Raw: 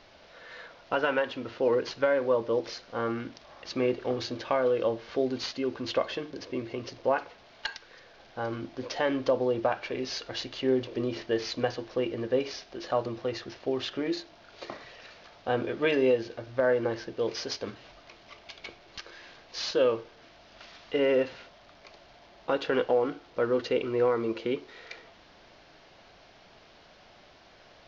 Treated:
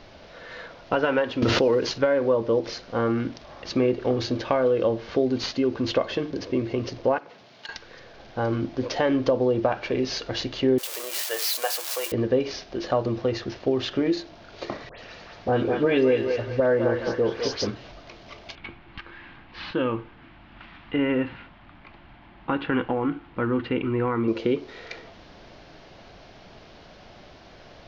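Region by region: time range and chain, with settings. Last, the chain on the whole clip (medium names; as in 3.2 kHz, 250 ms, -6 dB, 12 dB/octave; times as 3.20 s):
1.42–1.98 s: treble shelf 4.2 kHz +11 dB + swell ahead of each attack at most 21 dB/s
7.18–7.69 s: high-pass 120 Hz 24 dB/octave + compression 3:1, threshold -48 dBFS + three bands expanded up and down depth 70%
10.78–12.12 s: zero-crossing glitches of -23 dBFS + high-pass 650 Hz 24 dB/octave
14.89–17.67 s: phase dispersion highs, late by 107 ms, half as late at 2.6 kHz + band-passed feedback delay 206 ms, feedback 45%, band-pass 1.3 kHz, level -4 dB
18.55–24.28 s: low-pass 2.9 kHz 24 dB/octave + high-order bell 520 Hz -11.5 dB 1 oct
whole clip: bass shelf 430 Hz +8.5 dB; compression 2:1, threshold -25 dBFS; trim +4.5 dB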